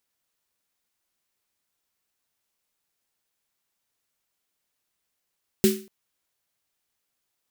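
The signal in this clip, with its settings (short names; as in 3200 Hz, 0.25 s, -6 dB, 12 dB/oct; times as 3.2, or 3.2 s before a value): snare drum length 0.24 s, tones 210 Hz, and 380 Hz, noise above 1600 Hz, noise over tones -7.5 dB, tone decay 0.36 s, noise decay 0.35 s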